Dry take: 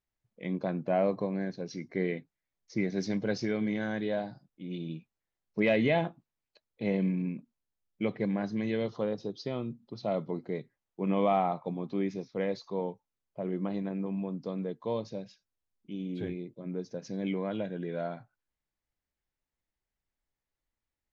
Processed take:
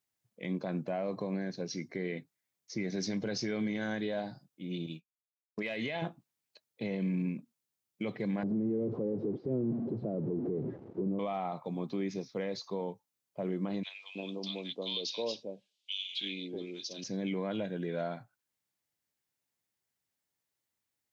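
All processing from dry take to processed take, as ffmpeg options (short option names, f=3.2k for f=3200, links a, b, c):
-filter_complex "[0:a]asettb=1/sr,asplit=3[a][b][c];[a]atrim=end=4.864[d];[b]atrim=start=4.86:end=6.02,asetpts=PTS-STARTPTS,afade=t=in:d=0.004:c=qsin,afade=t=out:st=1.156:d=0.004:c=qsin,tiltshelf=f=730:g=-4,agate=range=-33dB:threshold=-40dB:ratio=3:release=100:detection=peak,acompressor=threshold=-31dB:ratio=6:attack=3.2:release=140:knee=1:detection=peak[e];[c]atrim=start=6.016[f];[d][e]acrossfade=d=0.004:c1=hsin:c2=qsin[g];[g][f]acrossfade=d=0.004:c1=qsin:c2=hsin,asettb=1/sr,asplit=3[h][i][j];[h]atrim=end=8.434[k];[i]atrim=start=8.43:end=11.19,asetpts=PTS-STARTPTS,afade=t=in:d=0.004:c=qsin,afade=t=out:st=2.756:d=0.004:c=qsin,aeval=exprs='val(0)+0.5*0.0266*sgn(val(0))':c=same,lowpass=f=370:t=q:w=2[l];[j]atrim=start=11.186[m];[k][l]acrossfade=d=0.004:c1=hsin:c2=qsin[n];[n][m]acrossfade=d=0.004:c1=qsin:c2=hsin,asettb=1/sr,asplit=3[o][p][q];[o]atrim=end=13.834[r];[p]atrim=start=13.83:end=17.04,asetpts=PTS-STARTPTS,afade=t=in:d=0.004:c=qsin,afade=t=out:st=3.206:d=0.004:c=qsin,highpass=320,lowpass=4.7k,highshelf=f=2.2k:t=q:w=3:g=12.5,acrossover=split=1100[s][t];[s]adelay=320[u];[u][t]amix=inputs=2:normalize=0,atrim=end_sample=141561[v];[q]atrim=start=17.036[w];[r][v]acrossfade=d=0.004:c1=hsin:c2=qsin[x];[x][w]acrossfade=d=0.004:c1=qsin:c2=hsin,highpass=f=94:w=0.5412,highpass=f=94:w=1.3066,highshelf=f=3.7k:g=9,alimiter=level_in=1.5dB:limit=-24dB:level=0:latency=1:release=66,volume=-1.5dB"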